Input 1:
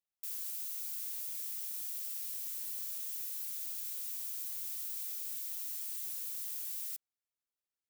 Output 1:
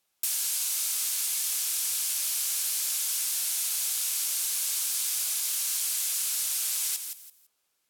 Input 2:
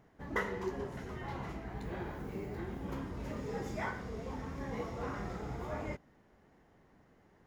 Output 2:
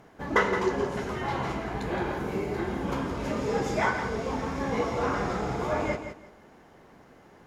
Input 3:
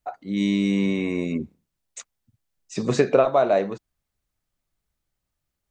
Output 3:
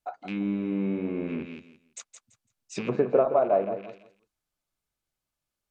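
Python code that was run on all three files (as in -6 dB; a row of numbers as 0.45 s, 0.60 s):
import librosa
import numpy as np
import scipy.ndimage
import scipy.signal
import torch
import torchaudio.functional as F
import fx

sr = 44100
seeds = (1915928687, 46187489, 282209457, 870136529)

p1 = fx.rattle_buzz(x, sr, strikes_db=-32.0, level_db=-22.0)
p2 = p1 + fx.echo_feedback(p1, sr, ms=168, feedback_pct=22, wet_db=-9, dry=0)
p3 = fx.env_lowpass_down(p2, sr, base_hz=1000.0, full_db=-19.5)
p4 = fx.low_shelf(p3, sr, hz=190.0, db=-9.0)
p5 = fx.notch(p4, sr, hz=1900.0, q=13.0)
y = p5 * 10.0 ** (-30 / 20.0) / np.sqrt(np.mean(np.square(p5)))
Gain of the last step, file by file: +19.0 dB, +13.0 dB, -3.0 dB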